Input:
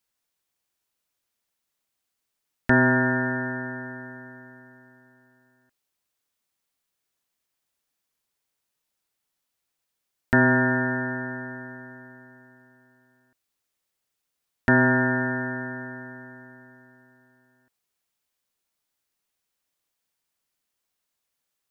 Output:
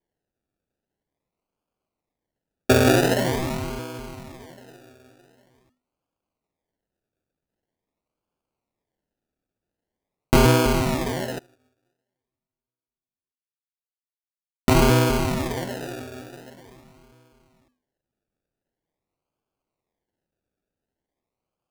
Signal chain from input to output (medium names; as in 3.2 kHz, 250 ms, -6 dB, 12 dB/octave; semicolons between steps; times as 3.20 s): low-pass 2.3 kHz 24 dB/octave; bass shelf 72 Hz -11.5 dB; hum notches 50/100/150/200/250 Hz; decimation with a swept rate 33×, swing 60% 0.45 Hz; 11.39–14.75 s: upward expansion 2.5:1, over -47 dBFS; trim +5 dB